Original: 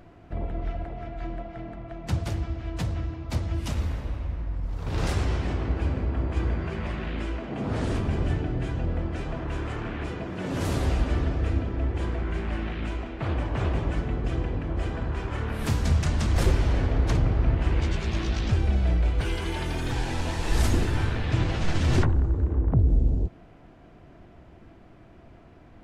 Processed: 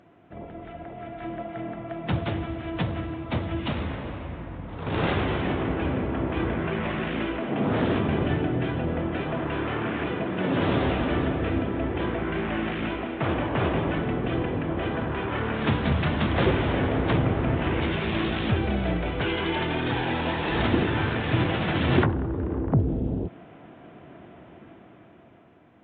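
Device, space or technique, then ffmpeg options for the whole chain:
Bluetooth headset: -af "highpass=150,dynaudnorm=framelen=340:gausssize=7:maxgain=9.5dB,aresample=8000,aresample=44100,volume=-3dB" -ar 16000 -c:a sbc -b:a 64k

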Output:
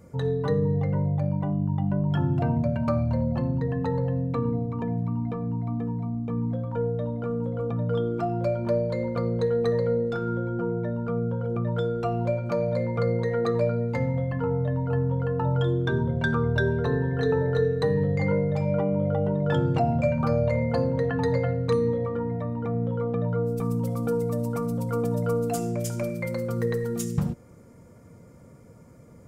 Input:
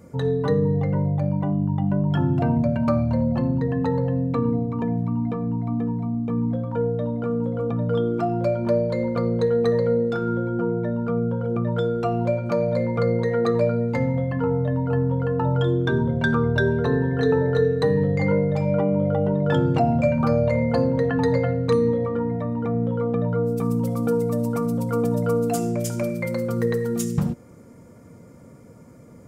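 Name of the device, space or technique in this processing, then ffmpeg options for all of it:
low shelf boost with a cut just above: -af "lowshelf=frequency=75:gain=6.5,equalizer=frequency=260:width_type=o:width=0.7:gain=-3.5,volume=-3.5dB"

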